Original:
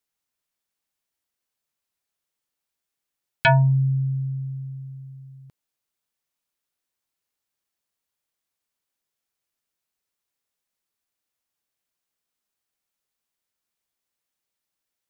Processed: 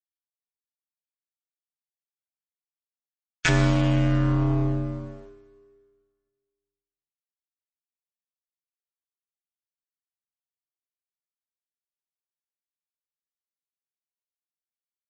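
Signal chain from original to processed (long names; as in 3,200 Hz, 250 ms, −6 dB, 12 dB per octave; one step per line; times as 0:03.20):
flat-topped bell 790 Hz −16 dB 1.3 octaves
fuzz pedal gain 33 dB, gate −40 dBFS
amplitude modulation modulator 170 Hz, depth 95%
four-comb reverb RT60 1.7 s, combs from 27 ms, DRR 5 dB
level −1 dB
MP3 32 kbit/s 24,000 Hz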